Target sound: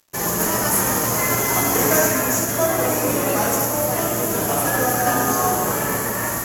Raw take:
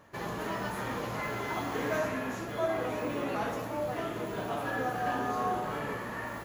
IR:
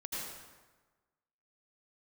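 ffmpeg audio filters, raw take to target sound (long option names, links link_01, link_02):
-filter_complex "[0:a]acontrast=85,asplit=2[link_01][link_02];[1:a]atrim=start_sample=2205[link_03];[link_02][link_03]afir=irnorm=-1:irlink=0,volume=-3.5dB[link_04];[link_01][link_04]amix=inputs=2:normalize=0,aexciter=amount=7.8:drive=8.5:freq=5700,aeval=exprs='sgn(val(0))*max(abs(val(0))-0.015,0)':channel_layout=same,equalizer=frequency=9600:width=7.2:gain=-14,volume=1.5dB" -ar 44100 -c:a aac -b:a 64k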